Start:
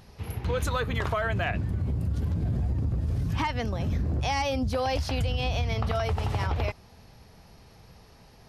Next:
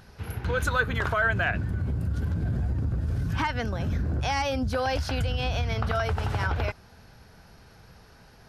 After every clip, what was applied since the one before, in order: bell 1500 Hz +12 dB 0.27 oct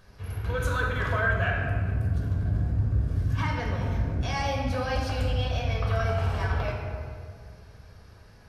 reverb RT60 2.1 s, pre-delay 3 ms, DRR -1.5 dB; gain -8 dB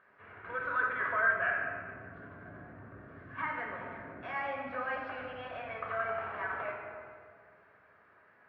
speaker cabinet 460–2100 Hz, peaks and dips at 480 Hz -6 dB, 810 Hz -5 dB, 1300 Hz +3 dB, 1900 Hz +4 dB; gain -2.5 dB

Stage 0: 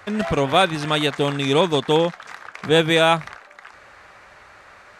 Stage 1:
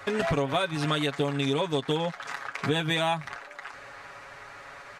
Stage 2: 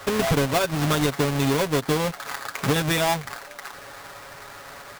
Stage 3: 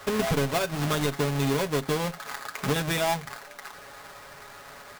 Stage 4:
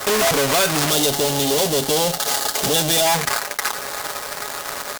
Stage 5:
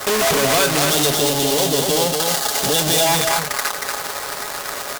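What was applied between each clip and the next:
comb 7.2 ms, depth 69%; compressor 10:1, threshold -23 dBFS, peak gain reduction 14 dB
half-waves squared off
reverb, pre-delay 5 ms, DRR 12 dB; gain -4.5 dB
fuzz box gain 38 dB, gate -48 dBFS; tone controls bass -9 dB, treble +7 dB; spectral gain 0.9–3.06, 890–2700 Hz -8 dB; gain -3 dB
echo 0.234 s -4 dB

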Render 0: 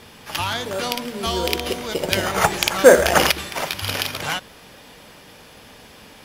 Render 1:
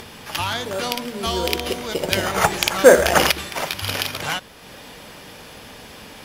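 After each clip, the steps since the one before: upward compressor, threshold -33 dBFS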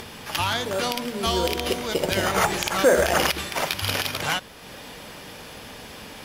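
limiter -9.5 dBFS, peak gain reduction 8.5 dB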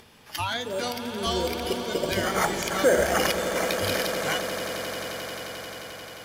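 spectral noise reduction 11 dB; swelling echo 88 ms, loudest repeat 8, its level -14.5 dB; gain -3 dB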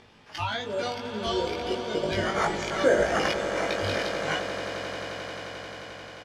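air absorption 100 m; doubler 19 ms -2.5 dB; gain -2.5 dB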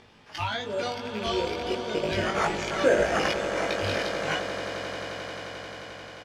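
rattling part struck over -36 dBFS, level -27 dBFS

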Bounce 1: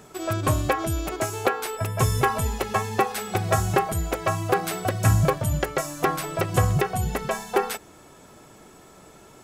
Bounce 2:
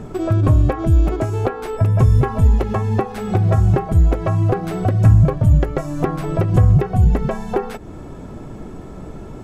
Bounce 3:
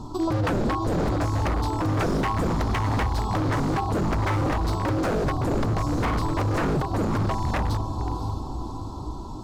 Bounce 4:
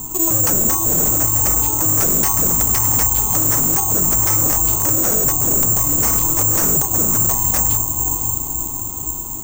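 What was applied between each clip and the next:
bell 250 Hz +2.5 dB; compressor 2.5:1, threshold -34 dBFS, peak gain reduction 13 dB; tilt -4 dB/oct; gain +8 dB
EQ curve 110 Hz 0 dB, 180 Hz -10 dB, 300 Hz +4 dB, 440 Hz -12 dB, 690 Hz -5 dB, 1000 Hz +11 dB, 1900 Hz -29 dB, 4200 Hz +11 dB, 8700 Hz -2 dB; diffused feedback echo 0.534 s, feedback 48%, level -7 dB; wavefolder -16.5 dBFS; gain -2 dB
careless resampling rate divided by 6×, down none, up zero stuff

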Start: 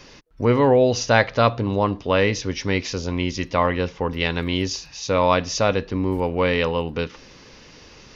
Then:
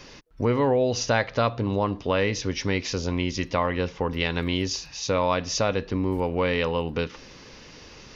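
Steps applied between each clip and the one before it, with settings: compressor 2:1, threshold -23 dBFS, peak gain reduction 7 dB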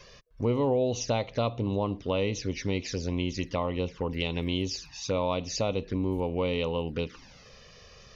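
envelope flanger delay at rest 2 ms, full sweep at -22 dBFS; gain -3 dB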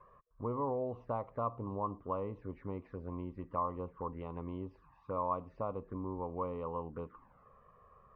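ladder low-pass 1200 Hz, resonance 75%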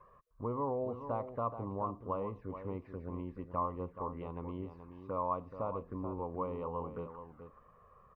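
echo 0.428 s -10 dB

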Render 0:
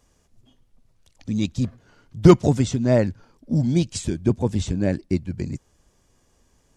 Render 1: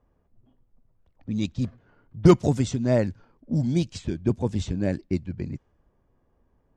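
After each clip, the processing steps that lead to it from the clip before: low-pass opened by the level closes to 1200 Hz, open at -15.5 dBFS; gain -3.5 dB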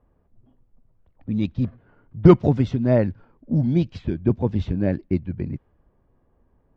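air absorption 320 m; gain +4 dB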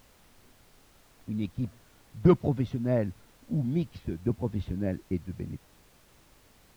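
added noise pink -51 dBFS; gain -8.5 dB

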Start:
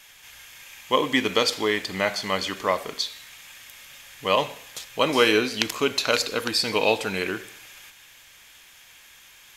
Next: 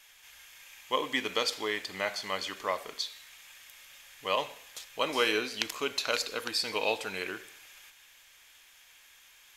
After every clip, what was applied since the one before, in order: bell 140 Hz -9 dB 2.4 oct; gain -7 dB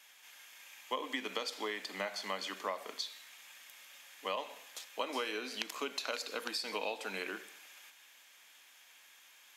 compressor 10:1, threshold -31 dBFS, peak gain reduction 10 dB; rippled Chebyshev high-pass 190 Hz, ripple 3 dB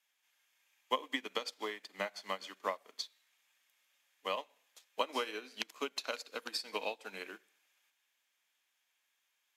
upward expander 2.5:1, over -49 dBFS; gain +5.5 dB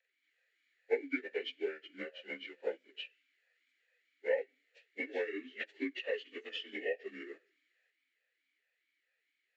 inharmonic rescaling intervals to 86%; vowel sweep e-i 2.3 Hz; gain +13 dB

